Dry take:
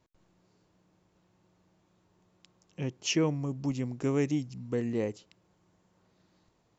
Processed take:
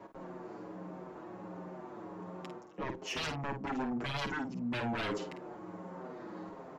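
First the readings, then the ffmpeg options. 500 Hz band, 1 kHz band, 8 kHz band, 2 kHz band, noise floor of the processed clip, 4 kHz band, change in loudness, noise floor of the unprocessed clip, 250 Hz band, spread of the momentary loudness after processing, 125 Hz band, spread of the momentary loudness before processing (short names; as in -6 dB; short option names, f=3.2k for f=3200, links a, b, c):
-6.0 dB, +8.0 dB, n/a, +3.5 dB, -51 dBFS, -2.0 dB, -8.0 dB, -71 dBFS, -5.5 dB, 11 LU, -8.5 dB, 9 LU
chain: -filter_complex "[0:a]acrossover=split=210|1600[a][b][c];[b]aeval=exprs='0.106*sin(PI/2*8.91*val(0)/0.106)':c=same[d];[a][d][c]amix=inputs=3:normalize=0,areverse,acompressor=threshold=-38dB:ratio=10,areverse,asoftclip=type=tanh:threshold=-33dB,asplit=2[e][f];[f]adelay=50,volume=-8.5dB[g];[e][g]amix=inputs=2:normalize=0,asplit=2[h][i];[i]adelay=6.8,afreqshift=-1.4[j];[h][j]amix=inputs=2:normalize=1,volume=6.5dB"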